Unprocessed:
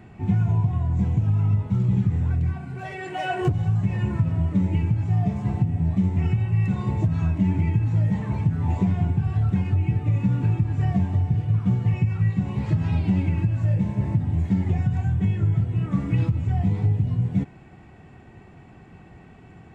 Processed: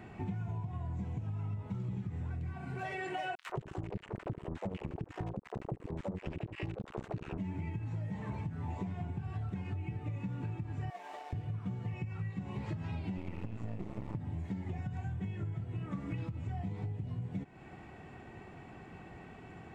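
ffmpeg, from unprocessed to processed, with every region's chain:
-filter_complex "[0:a]asettb=1/sr,asplit=3[a][b][c];[a]atrim=end=3.354[d];[b]atrim=start=3.35:end=7.38,asetpts=PTS-STARTPTS,afade=t=in:d=0.004:c=qsin,afade=t=out:st=4.026:d=0.004:c=qsin,acrusher=bits=2:mix=0:aa=0.5,acrossover=split=390|1200[e][f][g];[f]adelay=70[h];[e]adelay=100[i];[i][h][g]amix=inputs=3:normalize=0,atrim=end_sample=177723[j];[c]atrim=start=7.376[k];[d][j]acrossfade=d=0.004:c1=hsin:c2=qsin[l];[l][k]acrossfade=d=0.004:c1=qsin:c2=hsin,asettb=1/sr,asplit=3[m][n][o];[m]atrim=end=10.904[p];[n]atrim=start=10.9:end=11.33,asetpts=PTS-STARTPTS,afade=t=in:d=0.004:c=qsin,afade=t=out:st=0.426:d=0.004:c=qsin,highpass=f=510:w=0.5412,highpass=f=510:w=1.3066,aeval=exprs='sgn(val(0))*max(abs(val(0))-0.00168,0)':c=same[q];[o]atrim=start=11.326[r];[p][q]acrossfade=d=0.004:c1=hsin:c2=qsin[s];[s][r]acrossfade=d=0.004:c1=qsin:c2=hsin,asettb=1/sr,asplit=3[t][u][v];[t]atrim=end=13.174[w];[u]atrim=start=13.17:end=14.15,asetpts=PTS-STARTPTS,afade=t=in:d=0.004:c=qsin,afade=t=out:st=0.976:d=0.004:c=qsin,aeval=exprs='max(val(0),0)':c=same,bandreject=f=1.6k:w=10[x];[v]atrim=start=14.146[y];[w][x]acrossfade=d=0.004:c1=hsin:c2=qsin[z];[z][y]acrossfade=d=0.004:c1=qsin:c2=hsin,bass=f=250:g=-6,treble=f=4k:g=-2,acompressor=threshold=-36dB:ratio=6"

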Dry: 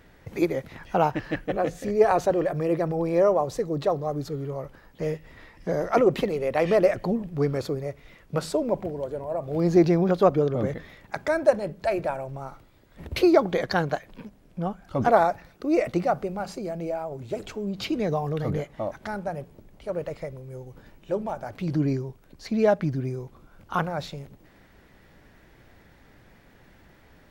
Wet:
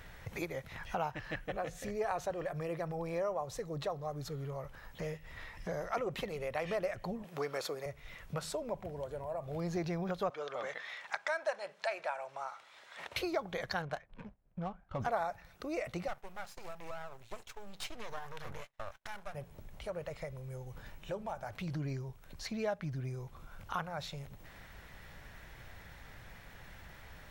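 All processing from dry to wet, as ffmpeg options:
-filter_complex "[0:a]asettb=1/sr,asplit=3[a][b][c];[a]atrim=end=7.244[d];[b]atrim=start=7.24:end=7.86,asetpts=PTS-STARTPTS,afade=t=in:d=0.004:c=qsin,afade=t=out:st=0.616:d=0.004:c=qsin,highpass=400,acontrast=71[e];[c]atrim=start=7.856[f];[d][e]acrossfade=d=0.004:c1=hsin:c2=qsin[g];[g][f]acrossfade=d=0.004:c1=qsin:c2=hsin,asettb=1/sr,asplit=3[h][i][j];[h]atrim=end=10.304[k];[i]atrim=start=10.3:end=13.16,asetpts=PTS-STARTPTS,afade=t=in:d=0.004:c=qsin,afade=t=out:st=2.856:d=0.004:c=qsin,acontrast=64,highpass=750,lowpass=6.8k[l];[j]atrim=start=13.156[m];[k][l]acrossfade=d=0.004:c1=hsin:c2=qsin[n];[n][m]acrossfade=d=0.004:c1=qsin:c2=hsin,asettb=1/sr,asplit=3[o][p][q];[o]atrim=end=13.824[r];[p]atrim=start=13.82:end=15,asetpts=PTS-STARTPTS,afade=t=in:d=0.004:c=qsin,afade=t=out:st=1.176:d=0.004:c=qsin,agate=range=-33dB:threshold=-44dB:ratio=3:release=100:detection=peak,adynamicsmooth=sensitivity=7:basefreq=1.7k[s];[q]atrim=start=14.996[t];[r][s]acrossfade=d=0.004:c1=hsin:c2=qsin[u];[u][t]acrossfade=d=0.004:c1=qsin:c2=hsin,asettb=1/sr,asplit=3[v][w][x];[v]atrim=end=16.084[y];[w]atrim=start=16.08:end=19.35,asetpts=PTS-STARTPTS,afade=t=in:d=0.004:c=qsin,afade=t=out:st=3.266:d=0.004:c=qsin,agate=range=-33dB:threshold=-36dB:ratio=3:release=100:detection=peak,lowshelf=f=370:g=-11,aeval=exprs='max(val(0),0)':c=same[z];[x]atrim=start=19.346[aa];[y][z]acrossfade=d=0.004:c1=hsin:c2=qsin[ab];[ab][aa]acrossfade=d=0.004:c1=qsin:c2=hsin,equalizer=f=300:t=o:w=1.6:g=-12.5,bandreject=f=4.7k:w=18,acompressor=threshold=-50dB:ratio=2,volume=5dB"

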